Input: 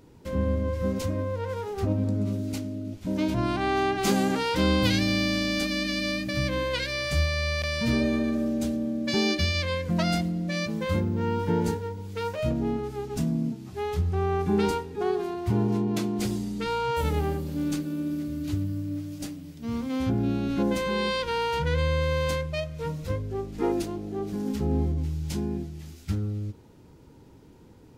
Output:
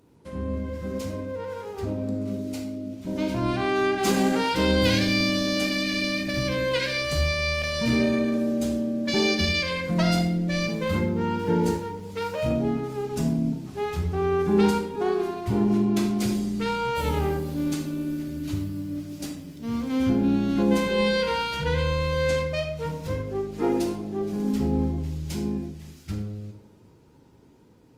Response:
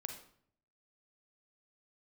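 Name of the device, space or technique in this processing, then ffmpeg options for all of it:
far-field microphone of a smart speaker: -filter_complex "[0:a]asettb=1/sr,asplit=3[a][b][c];[a]atrim=end=21.864[d];[b]atrim=start=21.86:end=22.42,asetpts=PTS-STARTPTS,afade=t=in:d=0.004:c=qsin,afade=t=out:st=0.556:d=0.004:c=qsin,acrossover=split=9700[e][f];[f]acompressor=threshold=-60dB:ratio=4:attack=1:release=60[g];[e][g]amix=inputs=2:normalize=0[h];[c]atrim=start=22.416[i];[d][h]acrossfade=d=0.004:c1=hsin:c2=qsin[j];[j][i]acrossfade=d=0.004:c1=qsin:c2=hsin[k];[1:a]atrim=start_sample=2205[l];[k][l]afir=irnorm=-1:irlink=0,highpass=f=100:p=1,dynaudnorm=f=730:g=9:m=5dB" -ar 48000 -c:a libopus -b:a 32k

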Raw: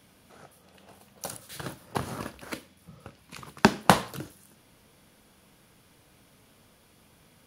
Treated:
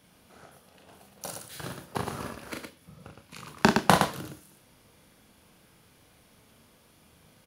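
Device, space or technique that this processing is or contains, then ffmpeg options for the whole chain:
slapback doubling: -filter_complex "[0:a]asplit=3[a][b][c];[b]adelay=39,volume=-4dB[d];[c]adelay=115,volume=-5dB[e];[a][d][e]amix=inputs=3:normalize=0,asplit=2[f][g];[g]adelay=27,volume=-13.5dB[h];[f][h]amix=inputs=2:normalize=0,volume=-2.5dB"

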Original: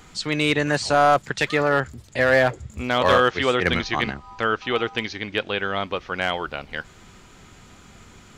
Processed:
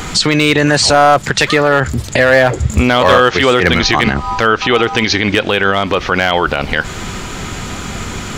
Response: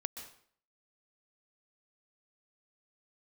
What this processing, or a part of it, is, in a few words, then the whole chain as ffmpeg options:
loud club master: -af "acompressor=threshold=-29dB:ratio=1.5,asoftclip=type=hard:threshold=-16dB,alimiter=level_in=25dB:limit=-1dB:release=50:level=0:latency=1,volume=-1dB"

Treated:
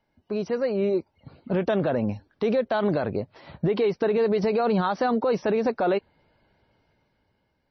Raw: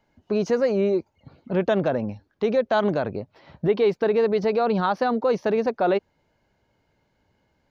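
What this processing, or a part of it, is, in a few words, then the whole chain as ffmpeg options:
low-bitrate web radio: -af "dynaudnorm=f=270:g=9:m=13dB,alimiter=limit=-10.5dB:level=0:latency=1:release=61,volume=-5dB" -ar 24000 -c:a libmp3lame -b:a 24k

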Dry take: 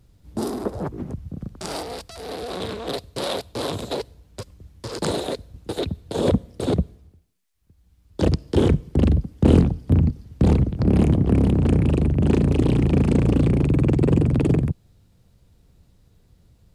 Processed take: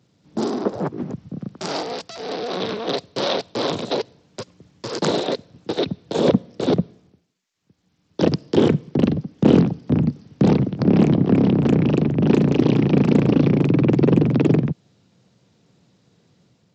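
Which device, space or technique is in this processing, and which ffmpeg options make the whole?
Bluetooth headset: -af "highpass=f=140:w=0.5412,highpass=f=140:w=1.3066,dynaudnorm=f=110:g=7:m=3dB,aresample=16000,aresample=44100,volume=1.5dB" -ar 32000 -c:a sbc -b:a 64k

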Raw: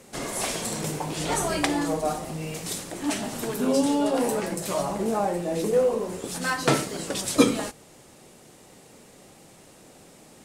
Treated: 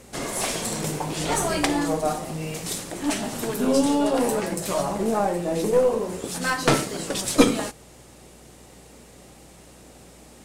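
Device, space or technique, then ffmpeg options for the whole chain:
valve amplifier with mains hum: -af "aeval=exprs='(tanh(2.82*val(0)+0.6)-tanh(0.6))/2.82':c=same,aeval=exprs='val(0)+0.00126*(sin(2*PI*60*n/s)+sin(2*PI*2*60*n/s)/2+sin(2*PI*3*60*n/s)/3+sin(2*PI*4*60*n/s)/4+sin(2*PI*5*60*n/s)/5)':c=same,volume=5dB"

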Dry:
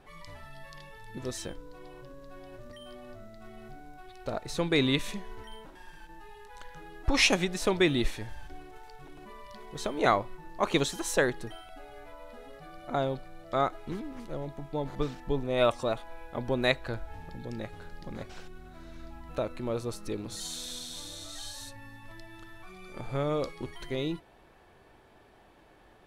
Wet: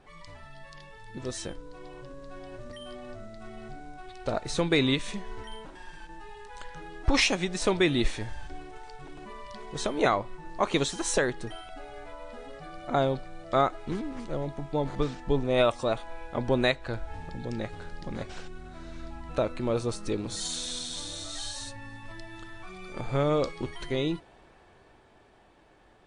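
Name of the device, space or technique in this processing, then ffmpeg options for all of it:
low-bitrate web radio: -af "dynaudnorm=f=110:g=31:m=5dB,alimiter=limit=-12dB:level=0:latency=1:release=391" -ar 22050 -c:a libmp3lame -b:a 48k

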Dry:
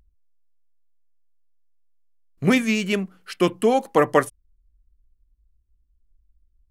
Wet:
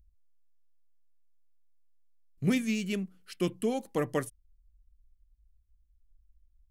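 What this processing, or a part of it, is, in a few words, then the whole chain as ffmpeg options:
smiley-face EQ: -af "lowshelf=f=160:g=7.5,equalizer=f=1k:t=o:w=2.1:g=-9,highshelf=f=7.3k:g=3.5,volume=-9dB"

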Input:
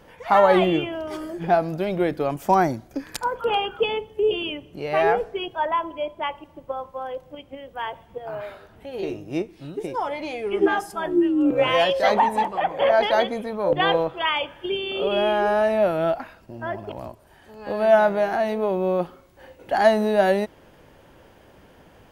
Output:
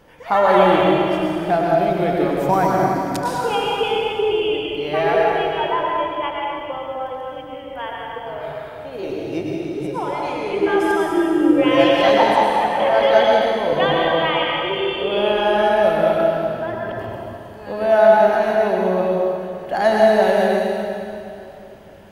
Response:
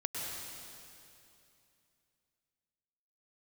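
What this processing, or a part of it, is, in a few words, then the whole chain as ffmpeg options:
stairwell: -filter_complex "[1:a]atrim=start_sample=2205[a];[0:a][a]afir=irnorm=-1:irlink=0,volume=1dB"

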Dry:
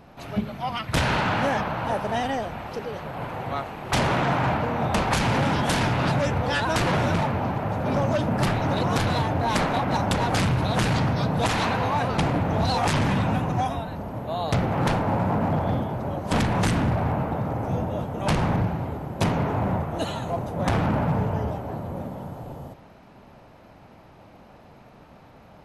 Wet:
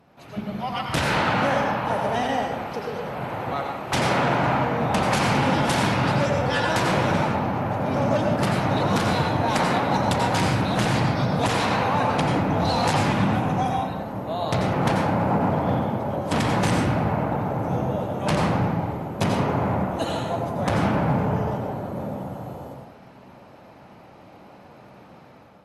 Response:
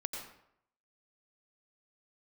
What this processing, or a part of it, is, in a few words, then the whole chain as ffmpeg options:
far-field microphone of a smart speaker: -filter_complex "[1:a]atrim=start_sample=2205[a];[0:a][a]afir=irnorm=-1:irlink=0,highpass=92,dynaudnorm=f=200:g=5:m=8dB,volume=-6dB" -ar 48000 -c:a libopus -b:a 48k

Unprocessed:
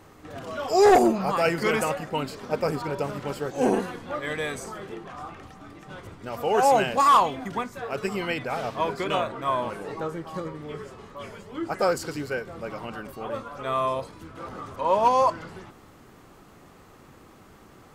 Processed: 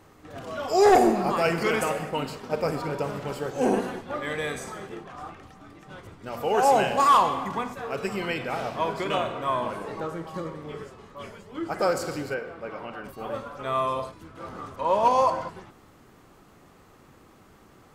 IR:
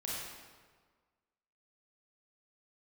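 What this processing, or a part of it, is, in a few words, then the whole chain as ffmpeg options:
keyed gated reverb: -filter_complex "[0:a]asplit=3[a][b][c];[1:a]atrim=start_sample=2205[d];[b][d]afir=irnorm=-1:irlink=0[e];[c]apad=whole_len=791388[f];[e][f]sidechaingate=range=-33dB:threshold=-38dB:ratio=16:detection=peak,volume=-7.5dB[g];[a][g]amix=inputs=2:normalize=0,asettb=1/sr,asplit=3[h][i][j];[h]atrim=end=12.344[k];[i]atrim=start=12.34:end=13.04,asetpts=PTS-STARTPTS,afade=t=in:d=0.004:c=qsin,afade=t=out:st=0.696:d=0.004:c=qsin,bass=f=250:g=-7,treble=f=4k:g=-11[l];[j]atrim=start=13.036[m];[k][l]acrossfade=d=0.004:c1=hsin:c2=qsin[n];[n][m]acrossfade=d=0.004:c1=qsin:c2=hsin,volume=-3dB"

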